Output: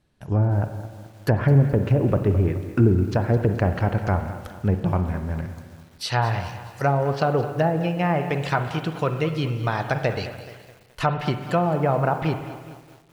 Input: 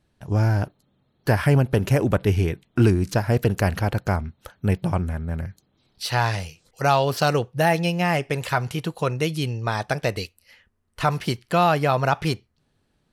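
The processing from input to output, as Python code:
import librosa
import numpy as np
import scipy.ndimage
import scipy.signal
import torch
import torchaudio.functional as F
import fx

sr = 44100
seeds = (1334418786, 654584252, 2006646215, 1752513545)

y = fx.env_lowpass_down(x, sr, base_hz=570.0, full_db=-14.0)
y = fx.rev_spring(y, sr, rt60_s=1.5, pass_ms=(43, 57), chirp_ms=55, drr_db=8.5)
y = fx.echo_crushed(y, sr, ms=212, feedback_pct=55, bits=7, wet_db=-14.0)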